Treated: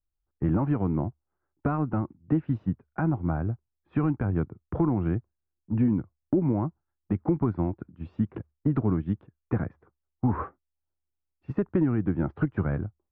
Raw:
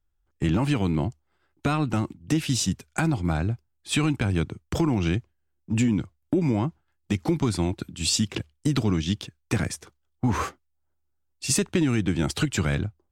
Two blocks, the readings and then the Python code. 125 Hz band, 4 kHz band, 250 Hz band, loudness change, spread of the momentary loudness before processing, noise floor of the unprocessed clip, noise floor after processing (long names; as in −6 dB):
−2.0 dB, below −35 dB, −1.5 dB, −2.5 dB, 7 LU, −73 dBFS, −83 dBFS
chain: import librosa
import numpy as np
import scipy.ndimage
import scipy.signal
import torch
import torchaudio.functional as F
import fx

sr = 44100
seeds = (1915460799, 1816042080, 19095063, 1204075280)

y = scipy.signal.sosfilt(scipy.signal.butter(4, 1400.0, 'lowpass', fs=sr, output='sos'), x)
y = fx.upward_expand(y, sr, threshold_db=-39.0, expansion=1.5)